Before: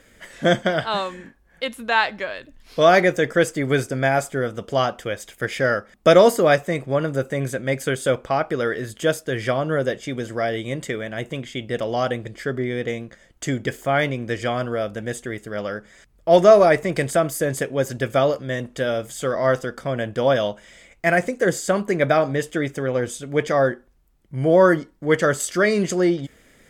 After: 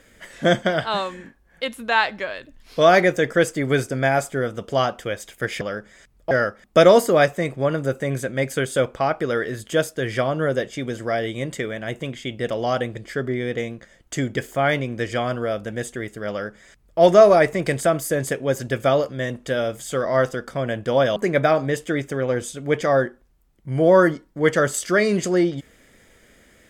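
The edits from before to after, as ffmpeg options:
ffmpeg -i in.wav -filter_complex "[0:a]asplit=4[link_01][link_02][link_03][link_04];[link_01]atrim=end=5.612[link_05];[link_02]atrim=start=15.598:end=16.302[link_06];[link_03]atrim=start=5.608:end=20.462[link_07];[link_04]atrim=start=21.818[link_08];[link_05][link_06]acrossfade=duration=0.004:curve1=hsin:curve2=hsin[link_09];[link_09][link_07]acrossfade=duration=0.004:curve1=hsin:curve2=hsin[link_10];[link_10][link_08]acrossfade=duration=0.004:curve1=hsin:curve2=hsin" out.wav

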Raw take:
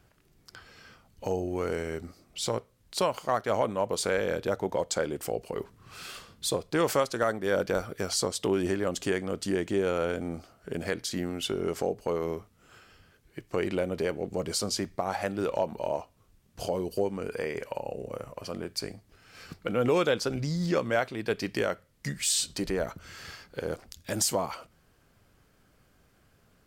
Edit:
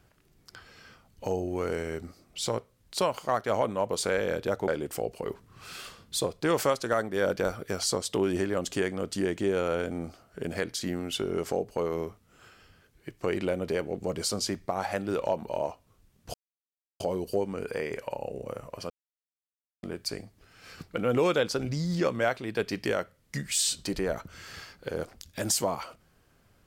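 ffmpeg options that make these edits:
ffmpeg -i in.wav -filter_complex "[0:a]asplit=4[link_01][link_02][link_03][link_04];[link_01]atrim=end=4.682[link_05];[link_02]atrim=start=4.978:end=16.64,asetpts=PTS-STARTPTS,afade=type=out:start_time=11.658:duration=0.004:curve=hsin,apad=pad_dur=0.66[link_06];[link_03]atrim=start=16.64:end=18.54,asetpts=PTS-STARTPTS,afade=type=in:duration=0.004:curve=hsin,afade=type=out:start_time=1.896:duration=0.004:curve=hsin,apad=pad_dur=0.93[link_07];[link_04]atrim=start=18.54,asetpts=PTS-STARTPTS,afade=type=in:duration=0.004:curve=hsin[link_08];[link_06][link_07][link_08]concat=n=3:v=0:a=1[link_09];[link_05][link_09]acrossfade=duration=0.004:curve1=hsin:curve2=hsin" out.wav

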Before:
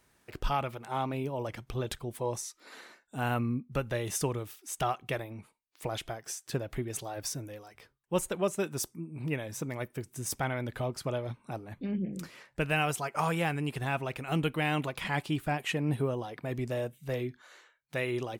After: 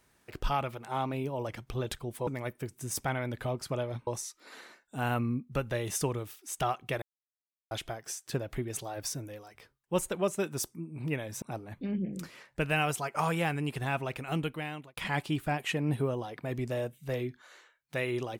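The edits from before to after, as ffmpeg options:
ffmpeg -i in.wav -filter_complex "[0:a]asplit=7[link_01][link_02][link_03][link_04][link_05][link_06][link_07];[link_01]atrim=end=2.272[link_08];[link_02]atrim=start=9.618:end=11.422[link_09];[link_03]atrim=start=2.268:end=5.22,asetpts=PTS-STARTPTS,afade=type=out:start_time=2.948:duration=0.004:curve=hsin[link_10];[link_04]atrim=start=5.22:end=5.91,asetpts=PTS-STARTPTS,volume=0[link_11];[link_05]atrim=start=5.91:end=9.622,asetpts=PTS-STARTPTS,afade=type=in:duration=0.004:curve=hsin[link_12];[link_06]atrim=start=11.418:end=14.97,asetpts=PTS-STARTPTS,afade=type=out:start_time=2.772:duration=0.78[link_13];[link_07]atrim=start=14.97,asetpts=PTS-STARTPTS,afade=type=in:duration=0.004:curve=hsin[link_14];[link_08][link_09]acrossfade=duration=0.004:curve1=hsin:curve2=hsin[link_15];[link_10][link_11][link_12]concat=n=3:v=0:a=1[link_16];[link_15][link_16]acrossfade=duration=0.004:curve1=hsin:curve2=hsin[link_17];[link_13][link_14]concat=n=2:v=0:a=1[link_18];[link_17][link_18]acrossfade=duration=0.004:curve1=hsin:curve2=hsin" out.wav

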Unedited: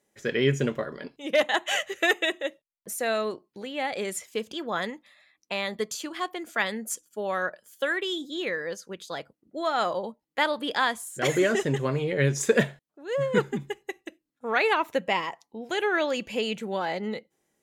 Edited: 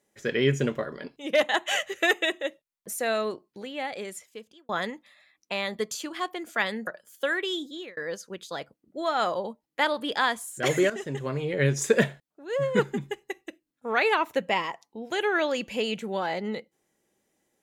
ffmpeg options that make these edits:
ffmpeg -i in.wav -filter_complex "[0:a]asplit=5[link_01][link_02][link_03][link_04][link_05];[link_01]atrim=end=4.69,asetpts=PTS-STARTPTS,afade=type=out:start_time=3.49:duration=1.2[link_06];[link_02]atrim=start=4.69:end=6.872,asetpts=PTS-STARTPTS,afade=type=in:duration=0.004:curve=hsin[link_07];[link_03]atrim=start=7.458:end=8.56,asetpts=PTS-STARTPTS,afade=type=out:start_time=0.742:duration=0.36[link_08];[link_04]atrim=start=8.56:end=11.49,asetpts=PTS-STARTPTS,afade=type=in:duration=0.004:curve=hsin,afade=type=out:start_time=2.926:duration=0.004:curve=hsin:silence=0.237137[link_09];[link_05]atrim=start=11.49,asetpts=PTS-STARTPTS,afade=type=in:duration=0.74:silence=0.237137[link_10];[link_06][link_07]concat=n=2:v=0:a=1[link_11];[link_08][link_09][link_10]concat=n=3:v=0:a=1[link_12];[link_11][link_12]acrossfade=duration=0.004:curve1=hsin:curve2=hsin" out.wav

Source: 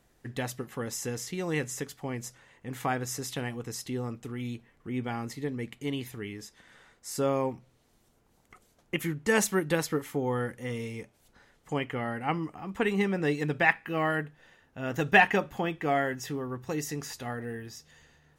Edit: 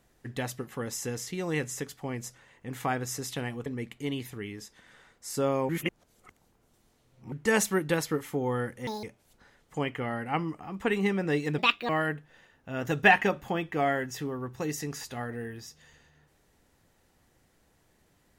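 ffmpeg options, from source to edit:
ffmpeg -i in.wav -filter_complex "[0:a]asplit=8[link_01][link_02][link_03][link_04][link_05][link_06][link_07][link_08];[link_01]atrim=end=3.662[link_09];[link_02]atrim=start=5.468:end=7.502[link_10];[link_03]atrim=start=7.498:end=9.132,asetpts=PTS-STARTPTS,areverse[link_11];[link_04]atrim=start=9.128:end=10.684[link_12];[link_05]atrim=start=10.68:end=10.98,asetpts=PTS-STARTPTS,asetrate=81585,aresample=44100,atrim=end_sample=7151,asetpts=PTS-STARTPTS[link_13];[link_06]atrim=start=10.976:end=13.534[link_14];[link_07]atrim=start=13.53:end=13.98,asetpts=PTS-STARTPTS,asetrate=64386,aresample=44100,atrim=end_sample=13592,asetpts=PTS-STARTPTS[link_15];[link_08]atrim=start=13.976[link_16];[link_09][link_10]acrossfade=duration=0.004:curve1=hsin:curve2=hsin[link_17];[link_17][link_11]acrossfade=duration=0.004:curve1=hsin:curve2=hsin[link_18];[link_18][link_12]acrossfade=duration=0.004:curve1=hsin:curve2=hsin[link_19];[link_19][link_13]acrossfade=duration=0.004:curve1=hsin:curve2=hsin[link_20];[link_20][link_14]acrossfade=duration=0.004:curve1=hsin:curve2=hsin[link_21];[link_21][link_15]acrossfade=duration=0.004:curve1=hsin:curve2=hsin[link_22];[link_22][link_16]acrossfade=duration=0.004:curve1=hsin:curve2=hsin" out.wav

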